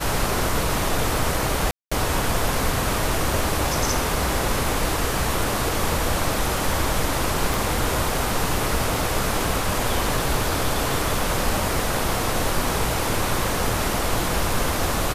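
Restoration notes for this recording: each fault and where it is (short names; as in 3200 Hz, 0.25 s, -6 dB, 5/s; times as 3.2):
1.71–1.92 gap 0.205 s
7.54 pop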